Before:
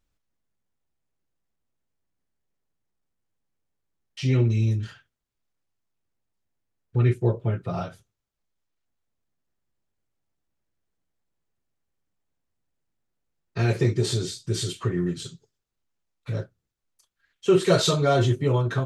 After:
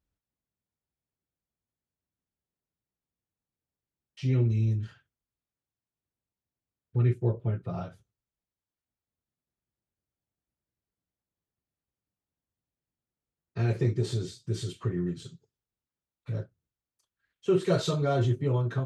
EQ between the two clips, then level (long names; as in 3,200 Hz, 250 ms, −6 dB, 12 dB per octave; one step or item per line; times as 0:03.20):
high-pass filter 54 Hz
spectral tilt −1.5 dB per octave
−8.0 dB